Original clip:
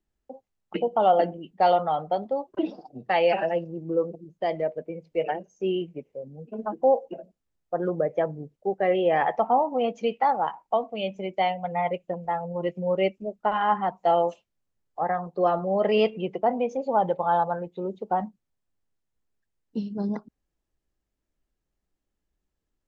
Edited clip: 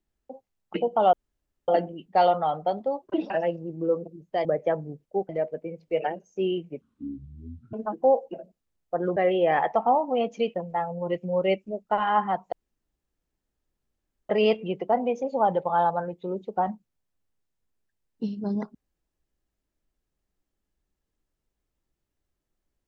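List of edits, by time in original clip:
0:01.13: splice in room tone 0.55 s
0:02.75–0:03.38: remove
0:06.05–0:06.53: play speed 52%
0:07.96–0:08.80: move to 0:04.53
0:10.18–0:12.08: remove
0:14.06–0:15.83: fill with room tone

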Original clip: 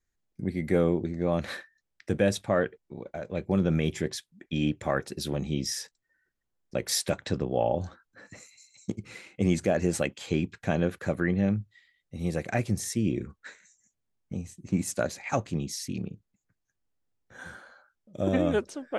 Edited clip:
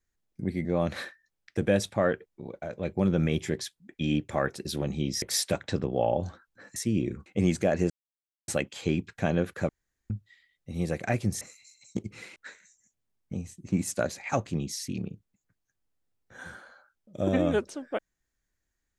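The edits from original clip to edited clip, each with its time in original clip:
0:00.65–0:01.17: remove
0:05.74–0:06.80: remove
0:08.34–0:09.29: swap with 0:12.86–0:13.36
0:09.93: splice in silence 0.58 s
0:11.14–0:11.55: fill with room tone

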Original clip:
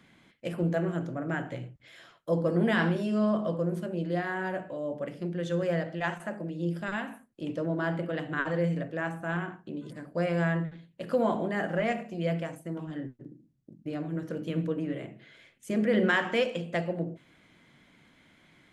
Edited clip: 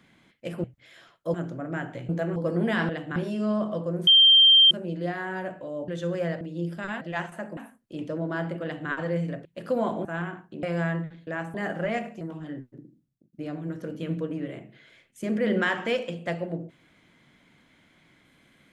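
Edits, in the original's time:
0:00.64–0:00.91: swap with 0:01.66–0:02.36
0:03.80: insert tone 3,160 Hz −12 dBFS 0.64 s
0:04.97–0:05.36: remove
0:05.89–0:06.45: move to 0:07.05
0:08.11–0:08.38: duplicate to 0:02.89
0:08.93–0:09.20: swap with 0:10.88–0:11.48
0:09.78–0:10.24: remove
0:12.15–0:12.68: remove
0:13.21–0:13.80: fade out equal-power

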